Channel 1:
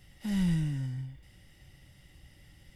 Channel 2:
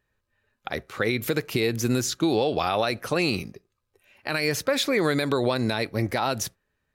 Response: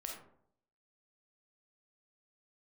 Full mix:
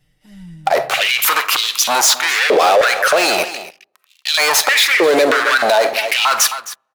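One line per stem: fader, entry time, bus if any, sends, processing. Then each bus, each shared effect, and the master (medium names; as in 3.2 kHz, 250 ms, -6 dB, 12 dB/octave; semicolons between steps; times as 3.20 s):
-5.5 dB, 0.00 s, no send, echo send -20.5 dB, comb 6.6 ms, depth 80%; auto duck -18 dB, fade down 1.25 s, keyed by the second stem
+2.5 dB, 0.00 s, send -9 dB, echo send -14 dB, waveshaping leveller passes 5; step-sequenced high-pass 3.2 Hz 490–3500 Hz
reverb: on, RT60 0.65 s, pre-delay 5 ms
echo: delay 264 ms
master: peak limiter -4.5 dBFS, peak gain reduction 10 dB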